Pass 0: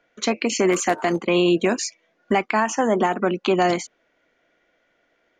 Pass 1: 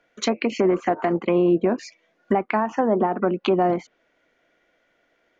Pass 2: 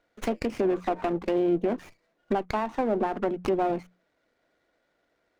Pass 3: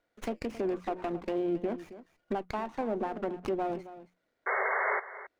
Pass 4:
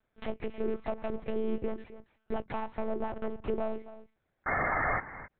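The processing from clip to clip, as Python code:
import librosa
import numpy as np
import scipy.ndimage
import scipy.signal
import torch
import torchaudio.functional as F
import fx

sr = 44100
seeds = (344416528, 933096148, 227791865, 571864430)

y1 = fx.env_lowpass_down(x, sr, base_hz=1000.0, full_db=-16.0)
y2 = fx.hum_notches(y1, sr, base_hz=60, count=3)
y2 = fx.running_max(y2, sr, window=9)
y2 = y2 * librosa.db_to_amplitude(-5.5)
y3 = fx.spec_paint(y2, sr, seeds[0], shape='noise', start_s=4.46, length_s=0.54, low_hz=380.0, high_hz=2200.0, level_db=-23.0)
y3 = y3 + 10.0 ** (-15.0 / 20.0) * np.pad(y3, (int(271 * sr / 1000.0), 0))[:len(y3)]
y3 = y3 * librosa.db_to_amplitude(-6.5)
y4 = fx.lpc_monotone(y3, sr, seeds[1], pitch_hz=220.0, order=8)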